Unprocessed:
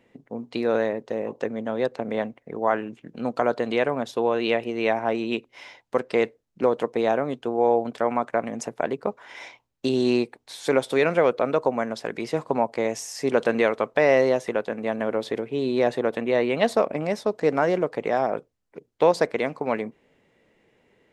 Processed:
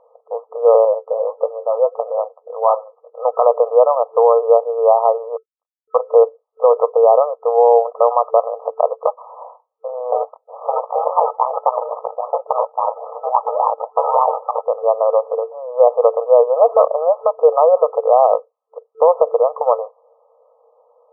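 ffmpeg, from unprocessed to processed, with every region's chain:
ffmpeg -i in.wav -filter_complex "[0:a]asettb=1/sr,asplit=3[link_01][link_02][link_03];[link_01]atrim=end=0.854[link_04];[link_02]atrim=start=0.85:end=2.97,asetpts=PTS-STARTPTS,afade=type=in:duration=0.004:curve=qsin,afade=type=out:start_time=2.116:duration=0.004:curve=qsin,flanger=delay=6.6:depth=5.5:regen=43:speed=1.6:shape=triangular,equalizer=frequency=140:width_type=o:width=2.5:gain=7[link_05];[link_03]atrim=start=2.966[link_06];[link_04][link_05]acrossfade=duration=0.004:curve1=hsin:curve2=qsin[link_07];[link_07][link_06]acrossfade=duration=0.004:curve1=qsin:curve2=hsin,asettb=1/sr,asplit=3[link_08][link_09][link_10];[link_08]atrim=end=5.364[link_11];[link_09]atrim=start=5.36:end=5.96,asetpts=PTS-STARTPTS,afade=type=in:duration=0.004:curve=qsin,afade=type=out:start_time=0.596:duration=0.004:curve=qsin,highpass=frequency=1100:poles=1,acrusher=bits=4:mix=0:aa=0.5[link_12];[link_10]atrim=start=5.956[link_13];[link_11][link_12]acrossfade=duration=0.004:curve1=hsin:curve2=qsin[link_14];[link_14][link_13]acrossfade=duration=0.004:curve1=qsin:curve2=hsin,asettb=1/sr,asplit=3[link_15][link_16][link_17];[link_15]atrim=end=10.124[link_18];[link_16]atrim=start=10.12:end=14.65,asetpts=PTS-STARTPTS,afade=type=in:duration=0.004:curve=qsin,afade=type=out:start_time=4.526:duration=0.004:curve=qsin,aeval=exprs='val(0)*sin(2*PI*380*n/s)':channel_layout=same,acrusher=samples=32:mix=1:aa=0.000001:lfo=1:lforange=19.2:lforate=3.6[link_19];[link_17]atrim=start=14.646[link_20];[link_18][link_19]acrossfade=duration=0.004:curve1=hsin:curve2=qsin[link_21];[link_21][link_20]acrossfade=duration=0.004:curve1=qsin:curve2=hsin,afftfilt=real='re*between(b*sr/4096,450,1300)':imag='im*between(b*sr/4096,450,1300)':win_size=4096:overlap=0.75,alimiter=level_in=14.5dB:limit=-1dB:release=50:level=0:latency=1,volume=-1dB" out.wav

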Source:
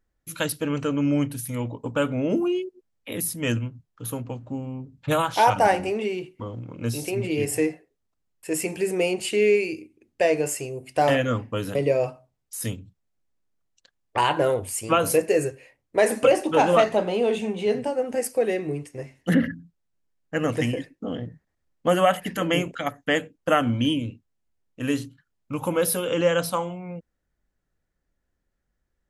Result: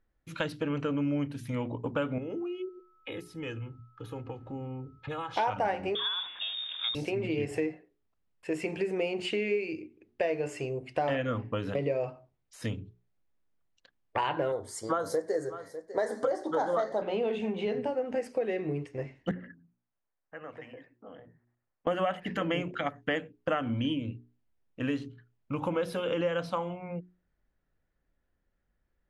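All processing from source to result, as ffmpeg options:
ffmpeg -i in.wav -filter_complex "[0:a]asettb=1/sr,asplit=3[link_01][link_02][link_03];[link_01]atrim=end=2.184[link_04];[link_02]atrim=start=2.18:end=5.37,asetpts=PTS-STARTPTS,afade=type=in:duration=0.004:curve=qsin,afade=type=out:start_time=3.186:duration=0.004:curve=qsin,aecho=1:1:2.4:0.61,atrim=end_sample=140679,acompressor=threshold=-35dB:ratio=4:attack=3.2:release=140:knee=1:detection=peak,aeval=exprs='val(0)+0.000708*sin(2*PI*1300*n/s)':channel_layout=same[link_05];[link_03]atrim=start=5.366[link_06];[link_04][link_05]acrossfade=duration=0.004:curve1=hsin:curve2=qsin[link_07];[link_07][link_06]acrossfade=duration=0.004:curve1=qsin:curve2=hsin,asettb=1/sr,asplit=3[link_08][link_09][link_10];[link_08]atrim=end=5.954[link_11];[link_09]atrim=start=5.95:end=6.95,asetpts=PTS-STARTPTS,afade=type=in:duration=0.004:curve=qsin,afade=type=out:start_time=0.996:duration=0.004:curve=qsin,aeval=exprs='val(0)+0.5*0.0126*sgn(val(0))':channel_layout=same,lowpass=frequency=3200:width_type=q:width=0.5098,lowpass=frequency=3200:width_type=q:width=0.6013,lowpass=frequency=3200:width_type=q:width=0.9,lowpass=frequency=3200:width_type=q:width=2.563,afreqshift=-3800[link_12];[link_10]atrim=start=6.946[link_13];[link_11][link_12]acrossfade=duration=0.004:curve1=hsin:curve2=qsin[link_14];[link_14][link_13]acrossfade=duration=0.004:curve1=qsin:curve2=hsin,asettb=1/sr,asplit=3[link_15][link_16][link_17];[link_15]atrim=end=14.524[link_18];[link_16]atrim=start=14.52:end=17.02,asetpts=PTS-STARTPTS,afade=type=in:duration=0.004:curve=qsin,afade=type=out:start_time=2.496:duration=0.004:curve=qsin,asuperstop=centerf=2600:order=4:qfactor=1.4,bass=frequency=250:gain=-9,treble=frequency=4000:gain=7,aecho=1:1:599:0.1,atrim=end_sample=110250[link_19];[link_17]atrim=start=17.016[link_20];[link_18][link_19]acrossfade=duration=0.004:curve1=hsin:curve2=qsin[link_21];[link_21][link_20]acrossfade=duration=0.004:curve1=qsin:curve2=hsin,asettb=1/sr,asplit=3[link_22][link_23][link_24];[link_22]atrim=end=19.314[link_25];[link_23]atrim=start=19.31:end=21.87,asetpts=PTS-STARTPTS,afade=type=in:duration=0.004:curve=qsin,afade=type=out:start_time=2.556:duration=0.004:curve=qsin,bandreject=frequency=60:width_type=h:width=6,bandreject=frequency=120:width_type=h:width=6,bandreject=frequency=180:width_type=h:width=6,bandreject=frequency=240:width_type=h:width=6,bandreject=frequency=300:width_type=h:width=6,bandreject=frequency=360:width_type=h:width=6,acompressor=threshold=-45dB:ratio=2:attack=3.2:release=140:knee=1:detection=peak,acrossover=split=530 2100:gain=0.224 1 0.224[link_26][link_27][link_28];[link_26][link_27][link_28]amix=inputs=3:normalize=0[link_29];[link_24]atrim=start=21.866[link_30];[link_25][link_29]acrossfade=duration=0.004:curve1=hsin:curve2=qsin[link_31];[link_31][link_30]acrossfade=duration=0.004:curve1=qsin:curve2=hsin,lowpass=3300,bandreject=frequency=60:width_type=h:width=6,bandreject=frequency=120:width_type=h:width=6,bandreject=frequency=180:width_type=h:width=6,bandreject=frequency=240:width_type=h:width=6,bandreject=frequency=300:width_type=h:width=6,bandreject=frequency=360:width_type=h:width=6,bandreject=frequency=420:width_type=h:width=6,acompressor=threshold=-29dB:ratio=3" out.wav

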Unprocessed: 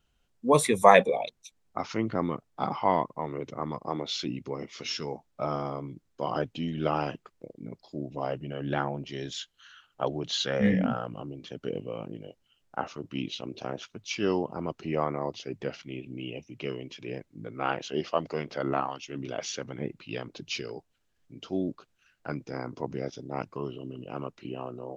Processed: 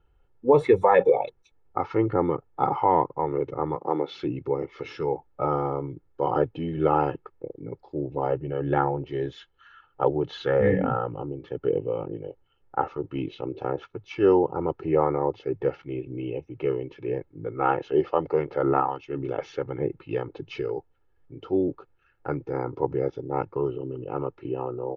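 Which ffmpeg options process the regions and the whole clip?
ffmpeg -i in.wav -filter_complex "[0:a]asettb=1/sr,asplit=3[link_01][link_02][link_03];[link_01]atrim=end=3.754[link_04];[link_02]atrim=start=3.75:end=4.23,asetpts=PTS-STARTPTS,afade=type=in:duration=0.004:curve=qsin,afade=type=out:start_time=0.476:duration=0.004:curve=qsin,aeval=exprs='val(0)+0.000708*(sin(2*PI*60*n/s)+sin(2*PI*2*60*n/s)/2+sin(2*PI*3*60*n/s)/3+sin(2*PI*4*60*n/s)/4+sin(2*PI*5*60*n/s)/5)':channel_layout=same,acrusher=bits=7:mode=log:mix=0:aa=0.000001,highpass=frequency=160:width=0.5412,highpass=frequency=160:width=1.3066[link_05];[link_03]atrim=start=4.226[link_06];[link_04][link_05]acrossfade=duration=0.004:curve1=hsin:curve2=qsin[link_07];[link_07][link_06]acrossfade=duration=0.004:curve1=qsin:curve2=hsin,lowpass=1300,aecho=1:1:2.3:0.8,alimiter=level_in=12.5dB:limit=-1dB:release=50:level=0:latency=1,volume=-7dB" out.wav

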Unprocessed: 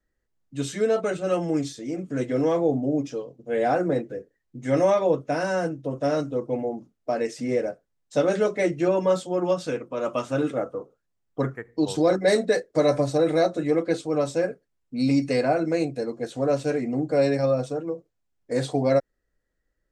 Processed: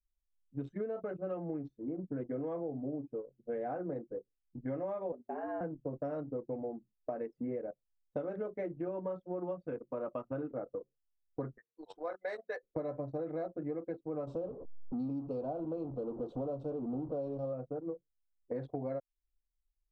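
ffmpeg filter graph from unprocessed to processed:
ffmpeg -i in.wav -filter_complex "[0:a]asettb=1/sr,asplit=3[link_01][link_02][link_03];[link_01]atrim=end=5.124[link_04];[link_02]atrim=start=5.12:end=5.61,asetpts=PTS-STARTPTS,afade=type=in:duration=0.004:curve=qsin,afade=type=out:start_time=0.486:duration=0.004:curve=qsin,lowshelf=frequency=150:gain=10,acompressor=threshold=-40dB:ratio=1.5:attack=3.2:release=140:knee=1:detection=peak,afreqshift=110[link_05];[link_03]atrim=start=5.606[link_06];[link_04][link_05]acrossfade=duration=0.004:curve1=hsin:curve2=qsin[link_07];[link_07][link_06]acrossfade=duration=0.004:curve1=qsin:curve2=hsin,asettb=1/sr,asplit=3[link_08][link_09][link_10];[link_08]atrim=end=11.584[link_11];[link_09]atrim=start=11.58:end=12.63,asetpts=PTS-STARTPTS,afade=type=in:duration=0.004:curve=qsin,afade=type=out:start_time=1.046:duration=0.004:curve=qsin,highpass=970,highshelf=frequency=5400:gain=3.5[link_12];[link_10]atrim=start=12.626[link_13];[link_11][link_12]acrossfade=duration=0.004:curve1=hsin:curve2=qsin[link_14];[link_14][link_13]acrossfade=duration=0.004:curve1=qsin:curve2=hsin,asettb=1/sr,asplit=3[link_15][link_16][link_17];[link_15]atrim=end=14.274[link_18];[link_16]atrim=start=14.27:end=17.53,asetpts=PTS-STARTPTS,afade=type=in:duration=0.004:curve=qsin,afade=type=out:start_time=3.256:duration=0.004:curve=qsin,aeval=exprs='val(0)+0.5*0.0355*sgn(val(0))':channel_layout=same,asuperstop=centerf=1900:order=4:qfactor=0.93[link_19];[link_17]atrim=start=17.526[link_20];[link_18][link_19]acrossfade=duration=0.004:curve1=hsin:curve2=qsin[link_21];[link_21][link_20]acrossfade=duration=0.004:curve1=qsin:curve2=hsin,anlmdn=25.1,lowpass=1300,acompressor=threshold=-31dB:ratio=12,volume=-3.5dB" out.wav

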